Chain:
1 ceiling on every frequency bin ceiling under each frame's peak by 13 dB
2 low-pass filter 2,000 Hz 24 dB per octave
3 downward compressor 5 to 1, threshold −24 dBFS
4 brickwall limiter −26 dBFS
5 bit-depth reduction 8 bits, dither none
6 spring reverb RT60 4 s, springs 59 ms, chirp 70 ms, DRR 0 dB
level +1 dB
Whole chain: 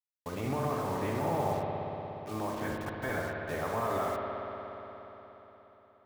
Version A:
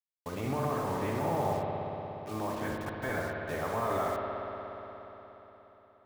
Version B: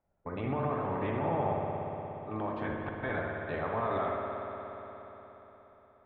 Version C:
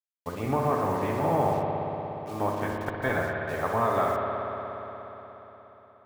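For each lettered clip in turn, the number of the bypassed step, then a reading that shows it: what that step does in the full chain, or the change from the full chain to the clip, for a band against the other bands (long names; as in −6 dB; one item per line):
3, average gain reduction 2.0 dB
5, distortion level −17 dB
4, average gain reduction 4.0 dB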